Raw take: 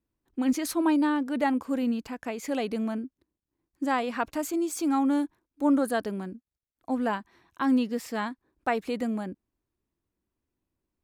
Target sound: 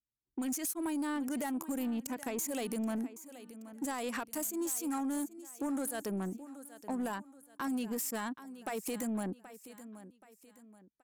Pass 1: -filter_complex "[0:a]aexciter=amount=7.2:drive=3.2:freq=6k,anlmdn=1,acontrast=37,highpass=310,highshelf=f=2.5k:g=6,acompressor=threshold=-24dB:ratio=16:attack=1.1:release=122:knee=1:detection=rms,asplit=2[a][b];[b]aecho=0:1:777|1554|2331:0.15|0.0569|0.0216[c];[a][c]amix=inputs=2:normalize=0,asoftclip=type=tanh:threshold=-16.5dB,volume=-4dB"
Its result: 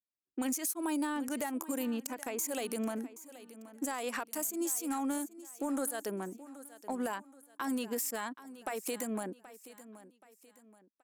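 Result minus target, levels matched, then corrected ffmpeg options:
soft clip: distortion -13 dB; 125 Hz band -6.0 dB
-filter_complex "[0:a]aexciter=amount=7.2:drive=3.2:freq=6k,anlmdn=1,acontrast=37,highpass=97,highshelf=f=2.5k:g=6,acompressor=threshold=-24dB:ratio=16:attack=1.1:release=122:knee=1:detection=rms,asplit=2[a][b];[b]aecho=0:1:777|1554|2331:0.15|0.0569|0.0216[c];[a][c]amix=inputs=2:normalize=0,asoftclip=type=tanh:threshold=-25dB,volume=-4dB"

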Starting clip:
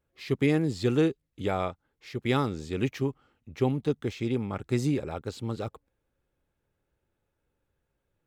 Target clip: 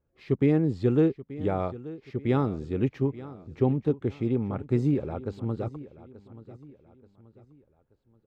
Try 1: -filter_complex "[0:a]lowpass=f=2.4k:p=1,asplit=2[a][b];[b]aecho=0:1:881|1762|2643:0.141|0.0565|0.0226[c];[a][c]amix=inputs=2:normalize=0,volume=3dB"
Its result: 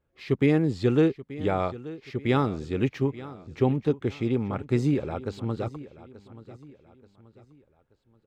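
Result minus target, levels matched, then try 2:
2000 Hz band +6.5 dB
-filter_complex "[0:a]lowpass=f=680:p=1,asplit=2[a][b];[b]aecho=0:1:881|1762|2643:0.141|0.0565|0.0226[c];[a][c]amix=inputs=2:normalize=0,volume=3dB"

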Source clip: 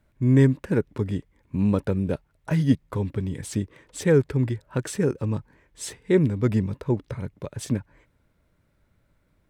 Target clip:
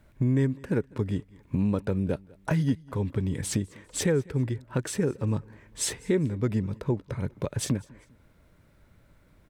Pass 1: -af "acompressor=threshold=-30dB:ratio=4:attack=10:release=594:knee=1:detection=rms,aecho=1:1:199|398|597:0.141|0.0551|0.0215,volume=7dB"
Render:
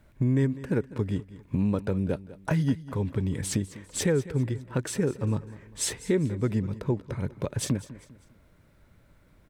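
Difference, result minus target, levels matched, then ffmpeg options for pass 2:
echo-to-direct +7.5 dB
-af "acompressor=threshold=-30dB:ratio=4:attack=10:release=594:knee=1:detection=rms,aecho=1:1:199|398:0.0596|0.0232,volume=7dB"

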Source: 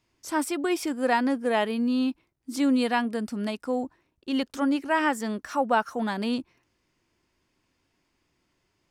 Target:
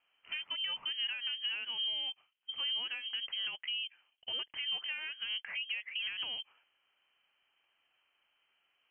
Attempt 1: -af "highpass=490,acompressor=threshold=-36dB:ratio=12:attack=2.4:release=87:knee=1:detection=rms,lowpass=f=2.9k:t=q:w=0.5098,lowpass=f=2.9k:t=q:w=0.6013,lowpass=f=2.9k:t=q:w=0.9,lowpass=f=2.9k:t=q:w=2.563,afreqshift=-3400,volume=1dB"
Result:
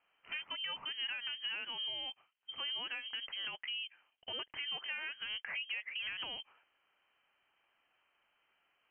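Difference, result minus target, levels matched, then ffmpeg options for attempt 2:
1000 Hz band +7.0 dB
-af "highpass=490,acompressor=threshold=-36dB:ratio=12:attack=2.4:release=87:knee=1:detection=rms,tiltshelf=f=1.1k:g=5.5,lowpass=f=2.9k:t=q:w=0.5098,lowpass=f=2.9k:t=q:w=0.6013,lowpass=f=2.9k:t=q:w=0.9,lowpass=f=2.9k:t=q:w=2.563,afreqshift=-3400,volume=1dB"

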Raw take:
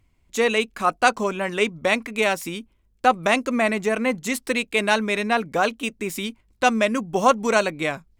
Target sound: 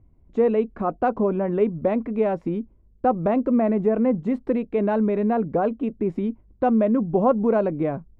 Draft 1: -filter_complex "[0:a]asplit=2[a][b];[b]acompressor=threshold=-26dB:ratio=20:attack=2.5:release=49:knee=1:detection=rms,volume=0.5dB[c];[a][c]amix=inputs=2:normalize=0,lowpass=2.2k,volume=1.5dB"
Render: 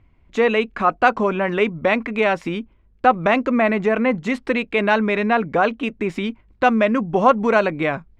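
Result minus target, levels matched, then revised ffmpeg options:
2000 Hz band +14.5 dB
-filter_complex "[0:a]asplit=2[a][b];[b]acompressor=threshold=-26dB:ratio=20:attack=2.5:release=49:knee=1:detection=rms,volume=0.5dB[c];[a][c]amix=inputs=2:normalize=0,lowpass=570,volume=1.5dB"

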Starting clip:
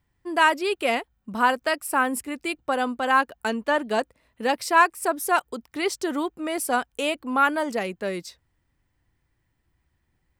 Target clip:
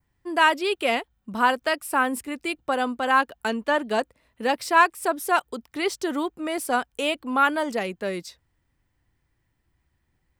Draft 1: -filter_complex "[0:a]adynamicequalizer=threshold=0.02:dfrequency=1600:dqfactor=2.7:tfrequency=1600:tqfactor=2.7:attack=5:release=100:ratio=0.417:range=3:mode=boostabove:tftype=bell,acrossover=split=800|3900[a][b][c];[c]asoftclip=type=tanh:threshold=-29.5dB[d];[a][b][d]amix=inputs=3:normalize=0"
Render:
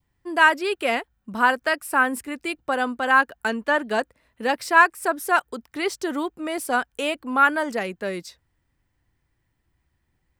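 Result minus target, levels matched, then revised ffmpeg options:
4000 Hz band -3.0 dB
-filter_complex "[0:a]adynamicequalizer=threshold=0.02:dfrequency=3400:dqfactor=2.7:tfrequency=3400:tqfactor=2.7:attack=5:release=100:ratio=0.417:range=3:mode=boostabove:tftype=bell,acrossover=split=800|3900[a][b][c];[c]asoftclip=type=tanh:threshold=-29.5dB[d];[a][b][d]amix=inputs=3:normalize=0"

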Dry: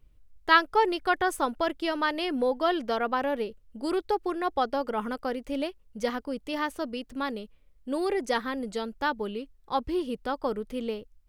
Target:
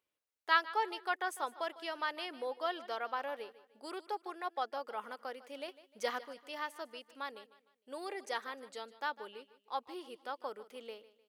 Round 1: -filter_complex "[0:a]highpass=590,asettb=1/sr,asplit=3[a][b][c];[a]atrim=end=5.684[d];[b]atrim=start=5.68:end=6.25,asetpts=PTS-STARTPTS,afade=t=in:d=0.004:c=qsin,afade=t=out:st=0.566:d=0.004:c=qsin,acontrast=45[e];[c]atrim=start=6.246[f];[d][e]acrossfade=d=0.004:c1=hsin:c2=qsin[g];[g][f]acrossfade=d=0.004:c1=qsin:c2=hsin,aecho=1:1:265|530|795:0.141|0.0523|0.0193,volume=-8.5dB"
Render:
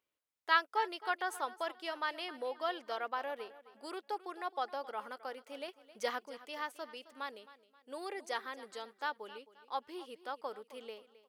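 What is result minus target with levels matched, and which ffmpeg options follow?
echo 0.113 s late
-filter_complex "[0:a]highpass=590,asettb=1/sr,asplit=3[a][b][c];[a]atrim=end=5.684[d];[b]atrim=start=5.68:end=6.25,asetpts=PTS-STARTPTS,afade=t=in:d=0.004:c=qsin,afade=t=out:st=0.566:d=0.004:c=qsin,acontrast=45[e];[c]atrim=start=6.246[f];[d][e]acrossfade=d=0.004:c1=hsin:c2=qsin[g];[g][f]acrossfade=d=0.004:c1=qsin:c2=hsin,aecho=1:1:152|304|456:0.141|0.0523|0.0193,volume=-8.5dB"

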